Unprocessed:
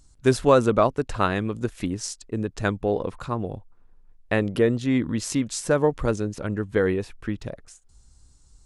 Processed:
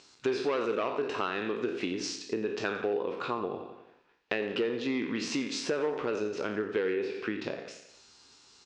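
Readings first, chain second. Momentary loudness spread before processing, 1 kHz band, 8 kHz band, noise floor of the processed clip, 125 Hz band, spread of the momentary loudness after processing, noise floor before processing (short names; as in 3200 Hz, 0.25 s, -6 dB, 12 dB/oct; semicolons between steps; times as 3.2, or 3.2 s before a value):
12 LU, -8.5 dB, -9.0 dB, -61 dBFS, -19.5 dB, 6 LU, -55 dBFS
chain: spectral trails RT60 0.43 s; in parallel at +1 dB: limiter -14.5 dBFS, peak gain reduction 10.5 dB; on the sum: hard clip -9 dBFS, distortion -17 dB; speaker cabinet 310–5000 Hz, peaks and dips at 400 Hz +5 dB, 590 Hz -4 dB, 2600 Hz +6 dB; on a send: feedback echo 88 ms, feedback 48%, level -12.5 dB; on the sum: compressor 3:1, threshold -26 dBFS, peak gain reduction 12 dB; mismatched tape noise reduction encoder only; gain -4 dB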